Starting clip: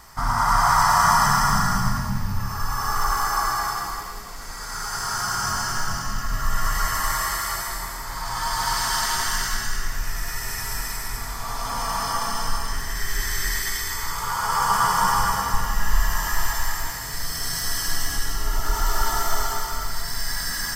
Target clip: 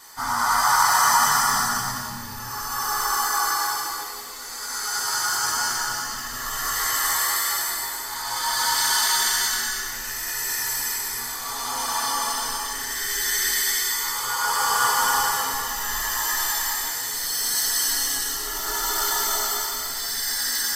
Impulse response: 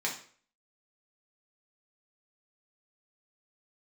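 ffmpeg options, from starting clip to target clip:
-filter_complex "[0:a]highshelf=f=4k:g=7.5[a];[1:a]atrim=start_sample=2205,asetrate=83790,aresample=44100[b];[a][b]afir=irnorm=-1:irlink=0"

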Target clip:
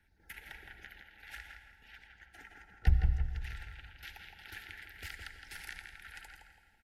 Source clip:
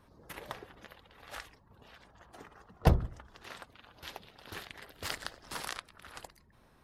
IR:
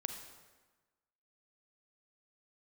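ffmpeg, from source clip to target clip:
-filter_complex "[0:a]agate=range=-7dB:threshold=-57dB:ratio=16:detection=peak,equalizer=f=125:t=o:w=1:g=-11,equalizer=f=250:t=o:w=1:g=-9,equalizer=f=500:t=o:w=1:g=-11,equalizer=f=1k:t=o:w=1:g=-4,equalizer=f=2k:t=o:w=1:g=7,equalizer=f=4k:t=o:w=1:g=-5,equalizer=f=8k:t=o:w=1:g=-5,acrossover=split=140[a][b];[b]acompressor=threshold=-48dB:ratio=3[c];[a][c]amix=inputs=2:normalize=0,aphaser=in_gain=1:out_gain=1:delay=4.5:decay=0.25:speed=1.4:type=sinusoidal,acrossover=split=500[d][e];[d]crystalizer=i=9:c=0[f];[e]asuperstop=centerf=1100:order=20:qfactor=2.6[g];[f][g]amix=inputs=2:normalize=0,asplit=2[h][i];[i]adelay=165,lowpass=f=2.5k:p=1,volume=-3.5dB,asplit=2[j][k];[k]adelay=165,lowpass=f=2.5k:p=1,volume=0.41,asplit=2[l][m];[m]adelay=165,lowpass=f=2.5k:p=1,volume=0.41,asplit=2[n][o];[o]adelay=165,lowpass=f=2.5k:p=1,volume=0.41,asplit=2[p][q];[q]adelay=165,lowpass=f=2.5k:p=1,volume=0.41[r];[h][j][l][n][p][r]amix=inputs=6:normalize=0,asplit=2[s][t];[1:a]atrim=start_sample=2205,asetrate=27342,aresample=44100[u];[t][u]afir=irnorm=-1:irlink=0,volume=-2dB[v];[s][v]amix=inputs=2:normalize=0,volume=-3.5dB"

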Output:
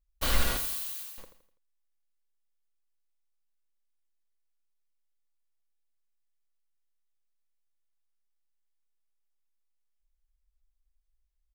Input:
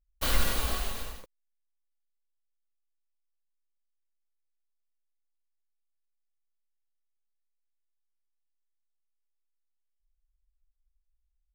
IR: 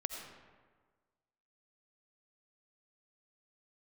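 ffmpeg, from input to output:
-filter_complex "[0:a]asettb=1/sr,asplit=3[a][b][c];[a]atrim=end=0.574[d];[b]atrim=start=0.57:end=1.18,asetpts=PTS-STARTPTS,afade=t=in:d=0.004:c=qsin,afade=t=out:st=0.606:d=0.004:c=qsin,aderivative[e];[c]atrim=start=1.176[f];[d][e]acrossfade=d=0.004:c1=hsin:c2=qsin[g];[g][f]acrossfade=d=0.004:c1=qsin:c2=hsin,aecho=1:1:83|166|249|332:0.299|0.119|0.0478|0.0191"

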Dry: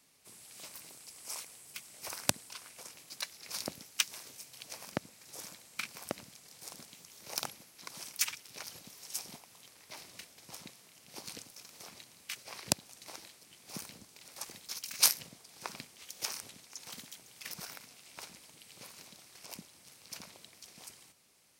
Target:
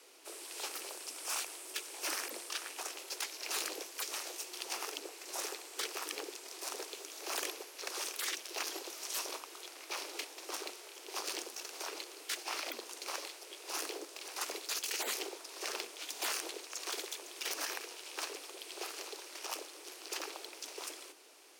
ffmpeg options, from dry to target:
-filter_complex "[0:a]afftfilt=real='re*lt(hypot(re,im),0.02)':imag='im*lt(hypot(re,im),0.02)':win_size=1024:overlap=0.75,bass=f=250:g=4,treble=f=4k:g=-2,asplit=2[a][b];[b]aeval=exprs='(mod(56.2*val(0)+1,2)-1)/56.2':c=same,volume=-3.5dB[c];[a][c]amix=inputs=2:normalize=0,highshelf=f=10k:g=-6.5,acrusher=bits=5:mode=log:mix=0:aa=0.000001,afreqshift=230,volume=5.5dB"

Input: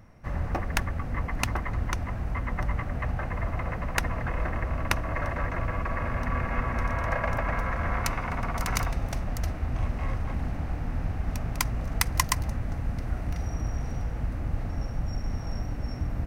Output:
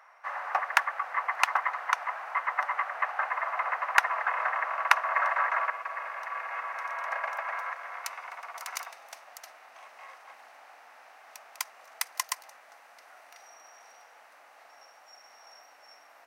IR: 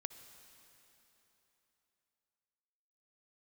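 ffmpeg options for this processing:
-af "asetnsamples=n=441:p=0,asendcmd='5.7 equalizer g 3.5;7.73 equalizer g -2.5',equalizer=f=1.2k:t=o:w=2.6:g=14,highpass=f=730:w=0.5412,highpass=f=730:w=1.3066,volume=-4.5dB"

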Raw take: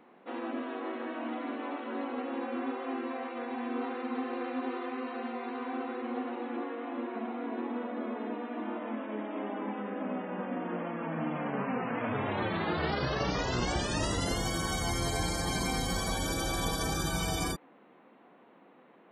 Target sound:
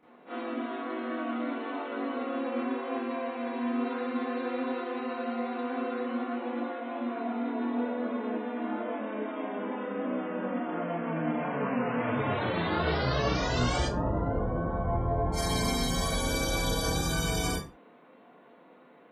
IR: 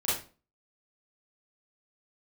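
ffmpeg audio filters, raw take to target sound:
-filter_complex "[0:a]asplit=3[a][b][c];[a]afade=t=out:st=13.83:d=0.02[d];[b]lowpass=f=1.2k:w=0.5412,lowpass=f=1.2k:w=1.3066,afade=t=in:st=13.83:d=0.02,afade=t=out:st=15.32:d=0.02[e];[c]afade=t=in:st=15.32:d=0.02[f];[d][e][f]amix=inputs=3:normalize=0[g];[1:a]atrim=start_sample=2205,afade=t=out:st=0.31:d=0.01,atrim=end_sample=14112,asetrate=52920,aresample=44100[h];[g][h]afir=irnorm=-1:irlink=0,volume=-4dB"

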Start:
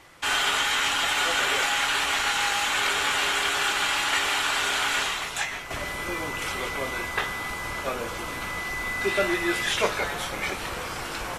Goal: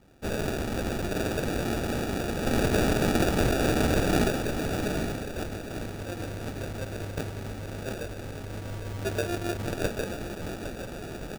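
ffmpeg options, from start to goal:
-filter_complex "[0:a]asettb=1/sr,asplit=3[a][b][c];[a]atrim=end=2.454[d];[b]atrim=start=2.45:end=4.31,asetpts=PTS-STARTPTS,afade=t=in:d=0.004:c=qsin,afade=t=out:st=1.856:d=0.004:c=qsin,equalizer=f=3.5k:t=o:w=2:g=9[e];[c]atrim=start=4.306[f];[d][e]acrossfade=d=0.004:c1=hsin:c2=qsin[g];[g][f]acrossfade=d=0.004:c1=qsin:c2=hsin,acrusher=samples=42:mix=1:aa=0.000001,aecho=1:1:810|1620|2430|3240:0.266|0.112|0.0469|0.0197,volume=-5dB"

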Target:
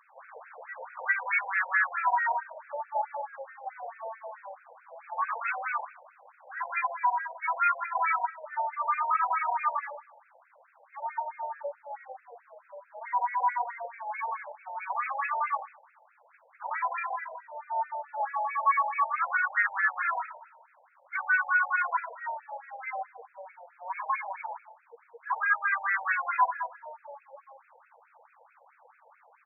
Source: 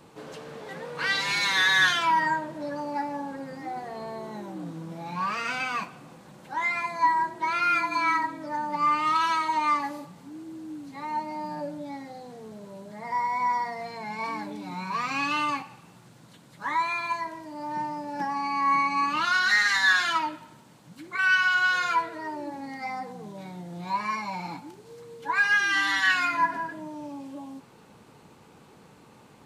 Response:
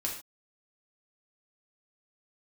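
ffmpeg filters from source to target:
-filter_complex "[0:a]alimiter=limit=-16.5dB:level=0:latency=1:release=281,asplit=3[a][b][c];[b]asetrate=33038,aresample=44100,atempo=1.33484,volume=-12dB[d];[c]asetrate=35002,aresample=44100,atempo=1.25992,volume=-13dB[e];[a][d][e]amix=inputs=3:normalize=0,asplit=2[f][g];[1:a]atrim=start_sample=2205[h];[g][h]afir=irnorm=-1:irlink=0,volume=-13.5dB[i];[f][i]amix=inputs=2:normalize=0,afftfilt=real='re*between(b*sr/1024,650*pow(1900/650,0.5+0.5*sin(2*PI*4.6*pts/sr))/1.41,650*pow(1900/650,0.5+0.5*sin(2*PI*4.6*pts/sr))*1.41)':imag='im*between(b*sr/1024,650*pow(1900/650,0.5+0.5*sin(2*PI*4.6*pts/sr))/1.41,650*pow(1900/650,0.5+0.5*sin(2*PI*4.6*pts/sr))*1.41)':win_size=1024:overlap=0.75"

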